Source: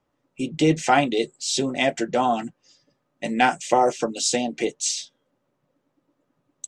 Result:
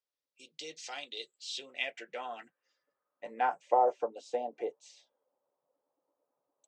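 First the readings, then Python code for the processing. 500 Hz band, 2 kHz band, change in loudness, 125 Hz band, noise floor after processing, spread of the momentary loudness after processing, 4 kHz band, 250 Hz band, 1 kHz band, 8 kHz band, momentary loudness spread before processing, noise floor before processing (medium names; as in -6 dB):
-11.0 dB, -14.5 dB, -12.0 dB, under -35 dB, under -85 dBFS, 18 LU, -14.0 dB, -27.0 dB, -10.0 dB, under -20 dB, 11 LU, -74 dBFS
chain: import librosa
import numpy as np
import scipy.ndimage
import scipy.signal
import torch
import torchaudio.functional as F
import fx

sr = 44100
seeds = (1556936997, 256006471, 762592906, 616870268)

y = fx.peak_eq(x, sr, hz=480.0, db=10.5, octaves=0.74)
y = fx.filter_sweep_bandpass(y, sr, from_hz=4600.0, to_hz=850.0, start_s=0.85, end_s=3.76, q=2.4)
y = F.gain(torch.from_numpy(y), -7.5).numpy()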